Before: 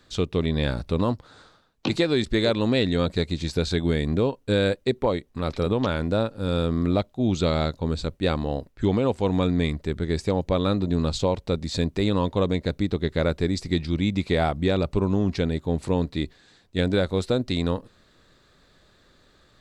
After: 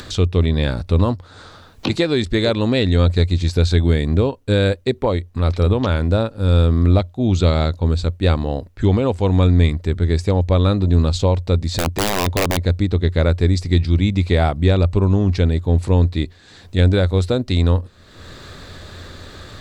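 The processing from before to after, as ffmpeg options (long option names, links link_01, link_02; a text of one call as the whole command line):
ffmpeg -i in.wav -filter_complex "[0:a]asettb=1/sr,asplit=3[link_01][link_02][link_03];[link_01]atrim=end=11.674[link_04];[link_02]atrim=start=11.67:end=12.64,asetpts=PTS-STARTPTS,afade=type=in:duration=0.004:curve=qsin,afade=type=out:start_time=0.966:duration=0.004:curve=qsin,aeval=exprs='(mod(5.96*val(0)+1,2)-1)/5.96':channel_layout=same[link_05];[link_03]atrim=start=12.636[link_06];[link_04][link_05]acrossfade=duration=0.004:curve1=hsin:curve2=qsin[link_07];[link_07][link_06]acrossfade=duration=0.004:curve1=qsin:curve2=hsin,acompressor=mode=upward:threshold=-27dB:ratio=2.5,equalizer=frequency=88:width_type=o:width=0.33:gain=13,volume=4dB" out.wav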